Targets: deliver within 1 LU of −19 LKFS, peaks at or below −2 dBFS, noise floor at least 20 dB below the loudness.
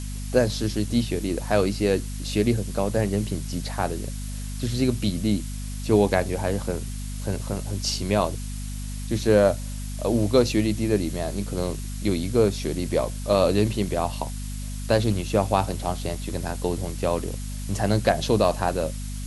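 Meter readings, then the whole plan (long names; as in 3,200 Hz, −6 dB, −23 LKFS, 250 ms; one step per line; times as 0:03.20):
mains hum 50 Hz; hum harmonics up to 250 Hz; level of the hum −29 dBFS; background noise floor −32 dBFS; target noise floor −45 dBFS; integrated loudness −25.0 LKFS; sample peak −4.0 dBFS; target loudness −19.0 LKFS
→ hum removal 50 Hz, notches 5
broadband denoise 13 dB, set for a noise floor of −32 dBFS
level +6 dB
brickwall limiter −2 dBFS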